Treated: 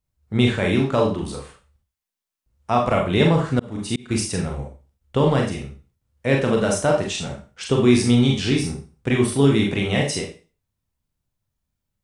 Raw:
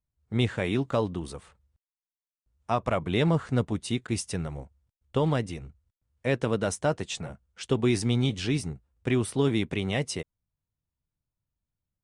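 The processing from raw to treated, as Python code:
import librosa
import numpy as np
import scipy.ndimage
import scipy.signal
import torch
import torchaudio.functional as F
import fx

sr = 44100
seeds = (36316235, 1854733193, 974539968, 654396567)

y = fx.rev_schroeder(x, sr, rt60_s=0.35, comb_ms=29, drr_db=0.0)
y = fx.auto_swell(y, sr, attack_ms=380.0, at=(3.22, 4.11))
y = F.gain(torch.from_numpy(y), 5.0).numpy()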